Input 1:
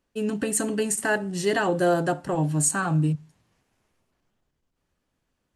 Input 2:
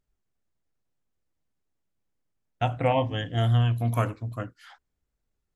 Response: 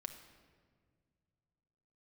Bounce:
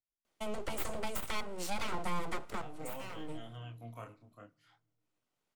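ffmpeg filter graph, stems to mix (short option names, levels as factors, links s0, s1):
-filter_complex "[0:a]aeval=exprs='abs(val(0))':c=same,adelay=250,volume=1,asplit=2[s0][s1];[s1]volume=0.158[s2];[1:a]deesser=0.85,flanger=delay=22.5:depth=7.1:speed=0.58,volume=0.168,asplit=3[s3][s4][s5];[s4]volume=0.133[s6];[s5]apad=whole_len=256080[s7];[s0][s7]sidechaincompress=threshold=0.00141:ratio=10:attack=9.4:release=1320[s8];[2:a]atrim=start_sample=2205[s9];[s2][s6]amix=inputs=2:normalize=0[s10];[s10][s9]afir=irnorm=-1:irlink=0[s11];[s8][s3][s11]amix=inputs=3:normalize=0,lowshelf=f=160:g=-12,bandreject=f=1700:w=10,acrossover=split=130[s12][s13];[s13]acompressor=threshold=0.00891:ratio=2.5[s14];[s12][s14]amix=inputs=2:normalize=0"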